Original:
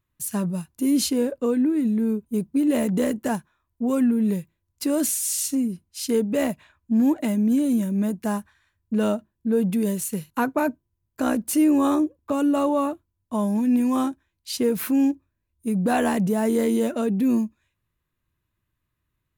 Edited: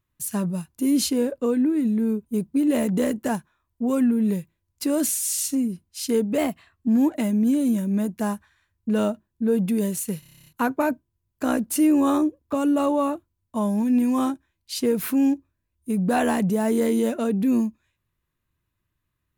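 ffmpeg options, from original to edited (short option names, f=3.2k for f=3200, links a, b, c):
-filter_complex "[0:a]asplit=12[a][b][c][d][e][f][g][h][i][j][k][l];[a]atrim=end=6.384[m];[b]atrim=start=6.38:end=6.92,asetpts=PTS-STARTPTS,asetrate=48069,aresample=44100[n];[c]atrim=start=6.916:end=10.272[o];[d]atrim=start=10.238:end=10.272[p];[e]atrim=start=10.238:end=10.272[q];[f]atrim=start=10.238:end=10.272[r];[g]atrim=start=10.238:end=10.272[s];[h]atrim=start=10.238:end=10.272[t];[i]atrim=start=10.238:end=10.272[u];[j]atrim=start=10.238:end=10.272[v];[k]atrim=start=10.238:end=10.272[w];[l]atrim=start=10.238[x];[m][n]acrossfade=d=0.004:c1=hsin:c2=hsin[y];[y][o]acrossfade=d=0.004:c1=hsin:c2=hsin[z];[z][p]acrossfade=d=0.004:c1=hsin:c2=hsin[aa];[aa][q]acrossfade=d=0.004:c1=hsin:c2=hsin[ab];[ab][r]acrossfade=d=0.004:c1=hsin:c2=hsin[ac];[ac][s]acrossfade=d=0.004:c1=hsin:c2=hsin[ad];[ad][t]acrossfade=d=0.004:c1=hsin:c2=hsin[ae];[ae][u]acrossfade=d=0.004:c1=hsin:c2=hsin[af];[af][v]acrossfade=d=0.004:c1=hsin:c2=hsin[ag];[ag][w]acrossfade=d=0.004:c1=hsin:c2=hsin[ah];[ah][x]acrossfade=d=0.004:c1=hsin:c2=hsin"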